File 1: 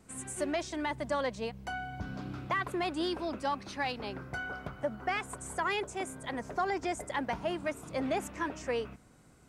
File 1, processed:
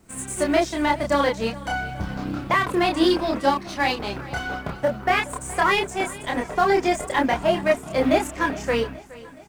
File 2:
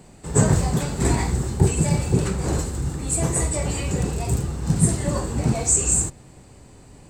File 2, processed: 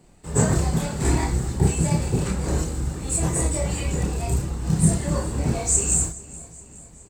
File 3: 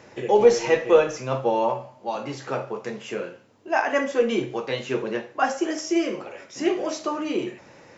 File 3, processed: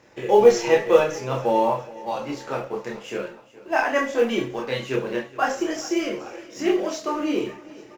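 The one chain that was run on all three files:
mu-law and A-law mismatch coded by A
multi-voice chorus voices 6, 0.27 Hz, delay 28 ms, depth 3.4 ms
repeating echo 419 ms, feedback 56%, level −19.5 dB
loudness normalisation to −23 LKFS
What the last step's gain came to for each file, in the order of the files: +16.5, +2.0, +4.5 decibels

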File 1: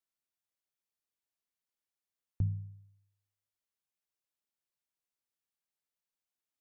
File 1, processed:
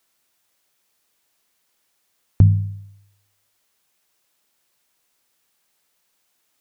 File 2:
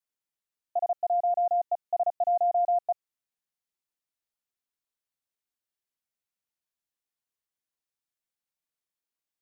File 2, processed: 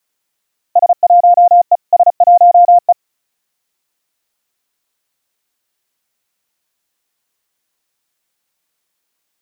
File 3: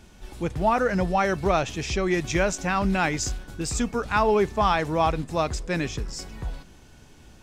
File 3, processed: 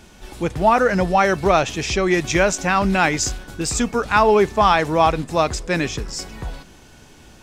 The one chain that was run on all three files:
low-shelf EQ 180 Hz −6 dB
normalise the peak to −2 dBFS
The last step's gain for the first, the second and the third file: +23.5, +18.5, +7.0 decibels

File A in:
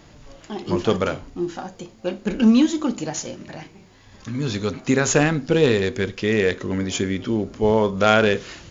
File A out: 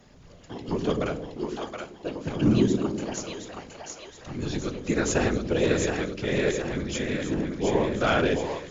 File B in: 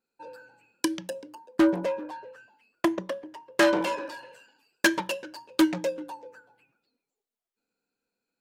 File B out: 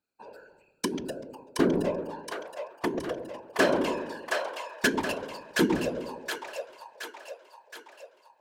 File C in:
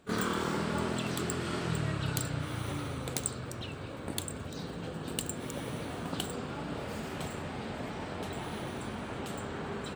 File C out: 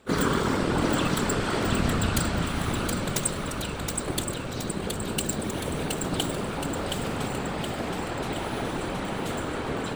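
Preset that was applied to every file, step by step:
random phases in short frames
echo with a time of its own for lows and highs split 540 Hz, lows 98 ms, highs 721 ms, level −4 dB
normalise the peak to −9 dBFS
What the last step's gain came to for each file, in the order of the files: −7.5, −3.0, +6.0 decibels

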